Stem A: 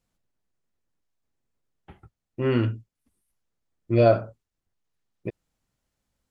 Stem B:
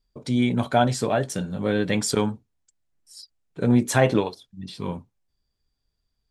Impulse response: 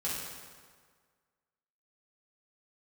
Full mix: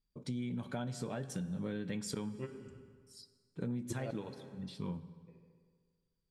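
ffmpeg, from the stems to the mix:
-filter_complex "[0:a]acompressor=threshold=0.0794:ratio=6,aeval=exprs='val(0)*pow(10,-26*if(lt(mod(-5.6*n/s,1),2*abs(-5.6)/1000),1-mod(-5.6*n/s,1)/(2*abs(-5.6)/1000),(mod(-5.6*n/s,1)-2*abs(-5.6)/1000)/(1-2*abs(-5.6)/1000))/20)':c=same,volume=1.06,asplit=2[s0][s1];[s1]volume=0.0668[s2];[1:a]equalizer=f=170:t=o:w=1.4:g=7,volume=0.237,asplit=3[s3][s4][s5];[s4]volume=0.141[s6];[s5]apad=whole_len=277847[s7];[s0][s7]sidechaingate=range=0.0224:threshold=0.00355:ratio=16:detection=peak[s8];[2:a]atrim=start_sample=2205[s9];[s2][s6]amix=inputs=2:normalize=0[s10];[s10][s9]afir=irnorm=-1:irlink=0[s11];[s8][s3][s11]amix=inputs=3:normalize=0,equalizer=f=700:t=o:w=0.37:g=-5.5,acompressor=threshold=0.0178:ratio=10"

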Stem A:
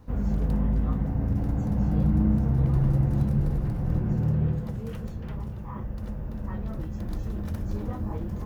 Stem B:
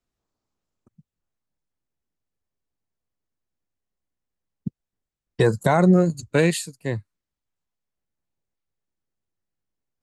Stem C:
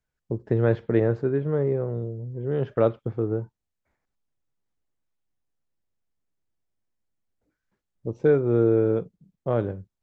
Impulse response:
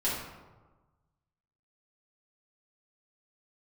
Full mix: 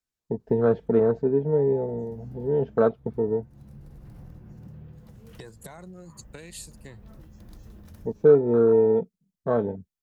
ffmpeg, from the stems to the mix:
-filter_complex "[0:a]tremolo=f=1.8:d=0.28,adelay=400,volume=0.237[s0];[1:a]acompressor=threshold=0.0631:ratio=2,volume=0.251[s1];[2:a]highpass=45,afwtdn=0.0316,aecho=1:1:4.5:0.59,volume=1,asplit=2[s2][s3];[s3]apad=whole_len=390664[s4];[s0][s4]sidechaincompress=threshold=0.0158:ratio=20:attack=16:release=660[s5];[s5][s1]amix=inputs=2:normalize=0,acompressor=threshold=0.00891:ratio=6,volume=1[s6];[s2][s6]amix=inputs=2:normalize=0,highshelf=f=2500:g=10.5"

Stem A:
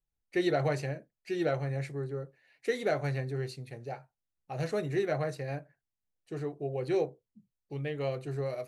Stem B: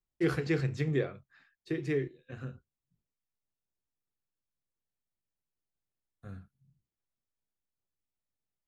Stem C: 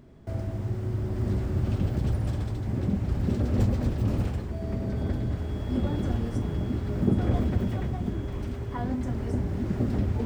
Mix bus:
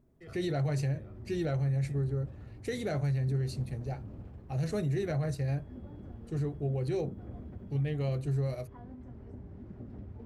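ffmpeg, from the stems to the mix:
-filter_complex "[0:a]bass=f=250:g=14,treble=f=4000:g=7,volume=0.631,asplit=2[s0][s1];[1:a]aecho=1:1:1.6:0.65,alimiter=limit=0.0631:level=0:latency=1,volume=0.126[s2];[2:a]acompressor=threshold=0.0251:ratio=1.5,lowpass=f=1200:p=1,volume=0.178[s3];[s1]apad=whole_len=382933[s4];[s2][s4]sidechaincompress=threshold=0.0126:ratio=8:attack=16:release=189[s5];[s0][s5][s3]amix=inputs=3:normalize=0,alimiter=level_in=1.06:limit=0.0631:level=0:latency=1:release=33,volume=0.944"

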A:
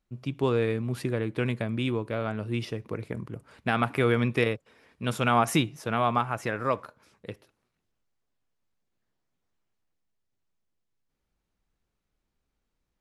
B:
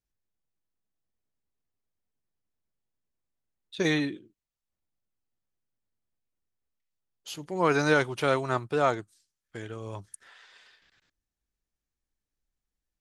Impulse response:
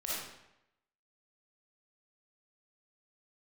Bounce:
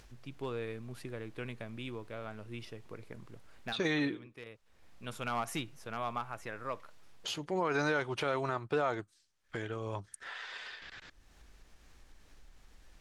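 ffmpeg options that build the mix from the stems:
-filter_complex "[0:a]volume=5.62,asoftclip=hard,volume=0.178,volume=0.299[s0];[1:a]aemphasis=mode=reproduction:type=50fm,acompressor=mode=upward:threshold=0.0178:ratio=2.5,alimiter=limit=0.0794:level=0:latency=1:release=132,volume=1.33,asplit=2[s1][s2];[s2]apad=whole_len=573414[s3];[s0][s3]sidechaincompress=threshold=0.00562:ratio=5:attack=16:release=719[s4];[s4][s1]amix=inputs=2:normalize=0,equalizer=f=170:t=o:w=2.9:g=-5"

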